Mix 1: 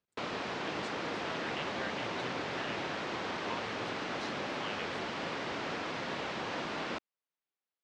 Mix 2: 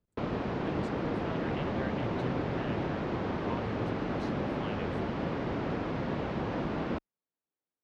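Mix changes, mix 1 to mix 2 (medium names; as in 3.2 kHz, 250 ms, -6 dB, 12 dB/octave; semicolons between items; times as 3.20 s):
speech: remove distance through air 90 m; master: add tilt EQ -4.5 dB/octave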